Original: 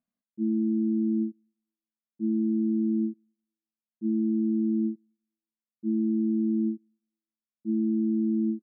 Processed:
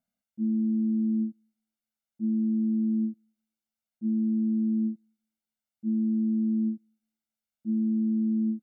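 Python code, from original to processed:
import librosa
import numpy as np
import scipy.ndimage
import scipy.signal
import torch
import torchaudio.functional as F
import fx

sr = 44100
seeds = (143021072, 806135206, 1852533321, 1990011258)

y = x + 0.91 * np.pad(x, (int(1.4 * sr / 1000.0), 0))[:len(x)]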